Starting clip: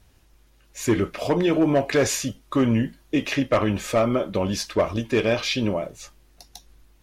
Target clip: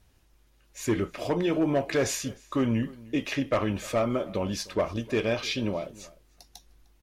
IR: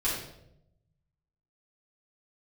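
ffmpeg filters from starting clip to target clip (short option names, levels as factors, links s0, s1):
-filter_complex "[0:a]asplit=2[s0][s1];[s1]adelay=303.2,volume=0.0891,highshelf=f=4000:g=-6.82[s2];[s0][s2]amix=inputs=2:normalize=0,volume=0.531"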